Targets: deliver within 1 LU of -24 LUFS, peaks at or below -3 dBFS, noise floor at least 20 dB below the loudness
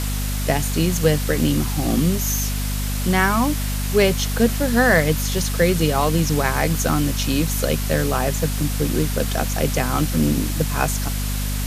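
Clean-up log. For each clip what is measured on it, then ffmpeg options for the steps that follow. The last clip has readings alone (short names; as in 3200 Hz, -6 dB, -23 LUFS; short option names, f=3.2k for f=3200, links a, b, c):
hum 50 Hz; harmonics up to 250 Hz; hum level -21 dBFS; noise floor -23 dBFS; noise floor target -41 dBFS; loudness -20.5 LUFS; peak -3.0 dBFS; loudness target -24.0 LUFS
-> -af "bandreject=f=50:t=h:w=6,bandreject=f=100:t=h:w=6,bandreject=f=150:t=h:w=6,bandreject=f=200:t=h:w=6,bandreject=f=250:t=h:w=6"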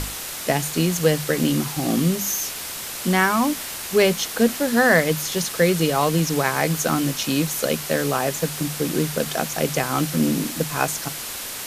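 hum none; noise floor -32 dBFS; noise floor target -42 dBFS
-> -af "afftdn=nr=10:nf=-32"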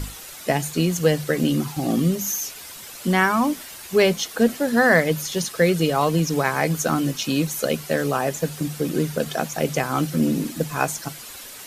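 noise floor -39 dBFS; noise floor target -42 dBFS
-> -af "afftdn=nr=6:nf=-39"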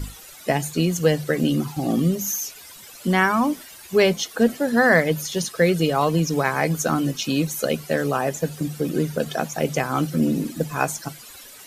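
noise floor -43 dBFS; loudness -22.0 LUFS; peak -4.0 dBFS; loudness target -24.0 LUFS
-> -af "volume=-2dB"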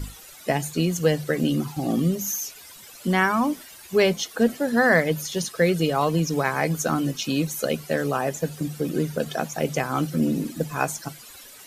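loudness -24.0 LUFS; peak -6.0 dBFS; noise floor -45 dBFS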